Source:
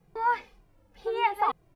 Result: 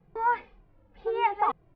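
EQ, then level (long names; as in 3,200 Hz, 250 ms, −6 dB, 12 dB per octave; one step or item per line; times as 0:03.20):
Butterworth low-pass 8,100 Hz
high-frequency loss of the air 360 metres
+2.0 dB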